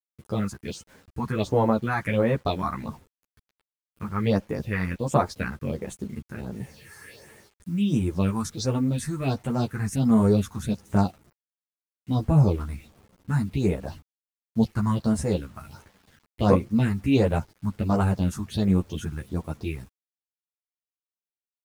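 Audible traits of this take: phasing stages 4, 1.4 Hz, lowest notch 500–4800 Hz; a quantiser's noise floor 10-bit, dither none; a shimmering, thickened sound

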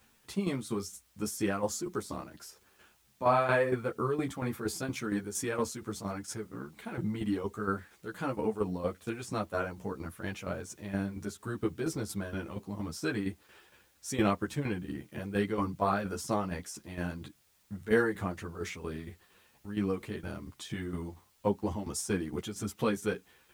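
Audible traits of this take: tremolo saw down 4.3 Hz, depth 70%; a quantiser's noise floor 12-bit, dither triangular; a shimmering, thickened sound

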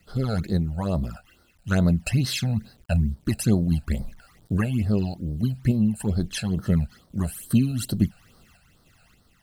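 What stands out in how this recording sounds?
a quantiser's noise floor 10-bit, dither none; random-step tremolo 3.5 Hz; phasing stages 12, 2.3 Hz, lowest notch 330–2500 Hz

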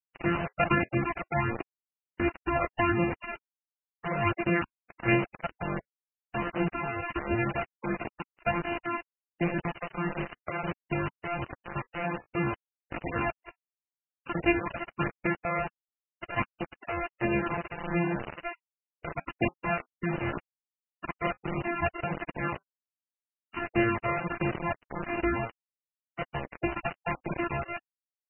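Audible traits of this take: a buzz of ramps at a fixed pitch in blocks of 128 samples; phasing stages 12, 1.4 Hz, lowest notch 270–1300 Hz; a quantiser's noise floor 6-bit, dither none; MP3

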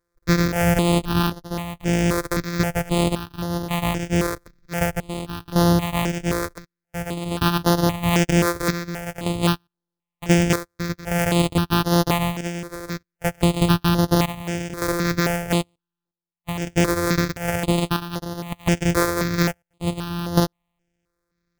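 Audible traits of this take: a buzz of ramps at a fixed pitch in blocks of 256 samples; chopped level 0.54 Hz, depth 65%, duty 70%; aliases and images of a low sample rate 11 kHz, jitter 20%; notches that jump at a steady rate 3.8 Hz 780–7900 Hz

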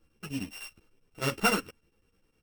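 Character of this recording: a buzz of ramps at a fixed pitch in blocks of 16 samples; chopped level 9.9 Hz, depth 65%, duty 75%; a shimmering, thickened sound

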